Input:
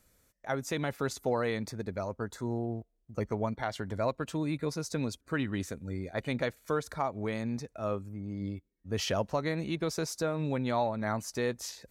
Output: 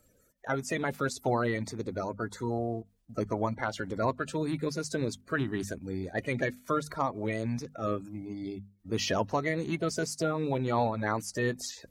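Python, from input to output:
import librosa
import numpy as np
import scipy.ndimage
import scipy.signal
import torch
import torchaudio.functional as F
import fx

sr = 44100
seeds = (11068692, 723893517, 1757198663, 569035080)

y = fx.spec_quant(x, sr, step_db=30)
y = fx.hum_notches(y, sr, base_hz=50, count=5)
y = y * librosa.db_to_amplitude(2.5)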